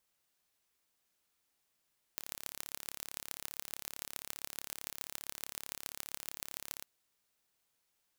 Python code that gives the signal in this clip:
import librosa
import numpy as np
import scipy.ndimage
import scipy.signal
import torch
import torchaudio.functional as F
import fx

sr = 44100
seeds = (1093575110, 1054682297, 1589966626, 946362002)

y = fx.impulse_train(sr, length_s=4.66, per_s=35.3, accent_every=5, level_db=-10.5)